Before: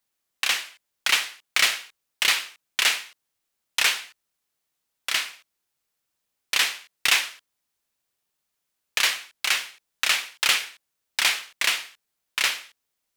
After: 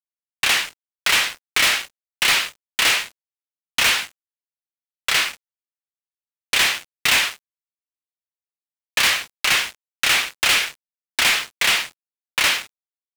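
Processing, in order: treble shelf 5 kHz -6 dB; waveshaping leveller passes 5; bit crusher 7-bit; trim -5 dB

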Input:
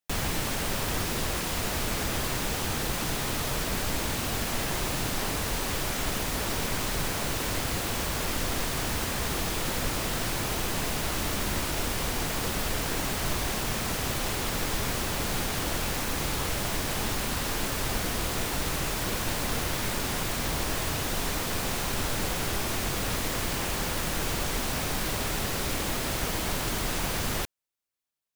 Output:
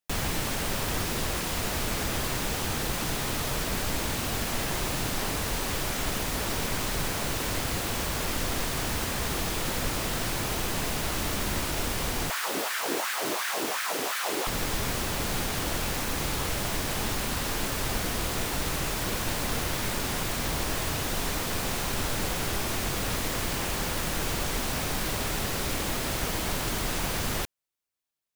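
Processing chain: 12.30–14.47 s: LFO high-pass sine 2.8 Hz 300–1600 Hz

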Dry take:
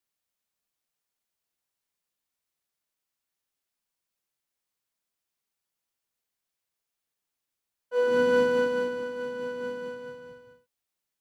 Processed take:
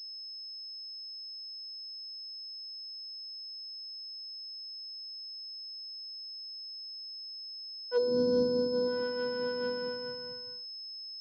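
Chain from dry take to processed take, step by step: spectral selection erased 0.35–1.23 s, 460–1200 Hz; low-pass that closes with the level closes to 400 Hz, closed at -22 dBFS; class-D stage that switches slowly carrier 5.2 kHz

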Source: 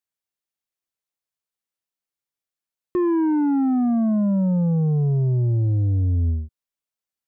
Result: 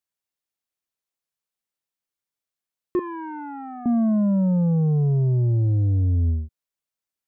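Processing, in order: 2.99–3.86 s: high-pass 790 Hz 12 dB/octave

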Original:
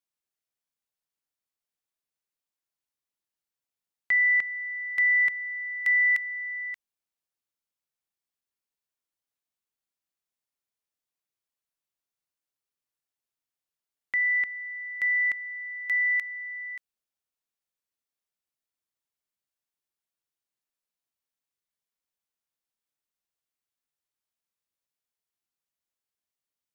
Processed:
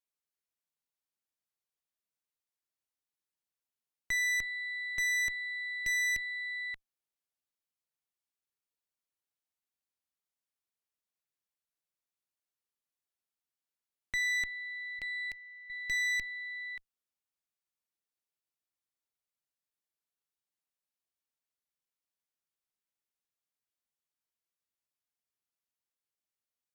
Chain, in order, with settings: 14.99–15.70 s: high-order bell 1.4 kHz -13.5 dB 1.1 oct; valve stage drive 29 dB, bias 0.75

